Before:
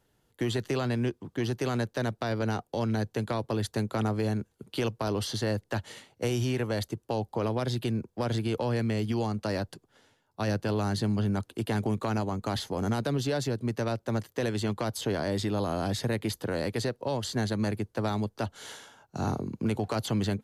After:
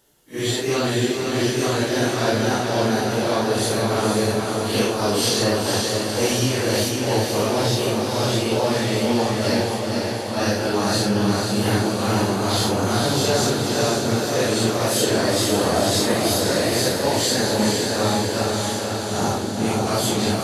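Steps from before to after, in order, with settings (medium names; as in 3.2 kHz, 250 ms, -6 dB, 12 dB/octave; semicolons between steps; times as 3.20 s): phase randomisation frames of 200 ms; tone controls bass -6 dB, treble +8 dB; echo that smears into a reverb 503 ms, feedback 66%, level -3 dB; trim +9 dB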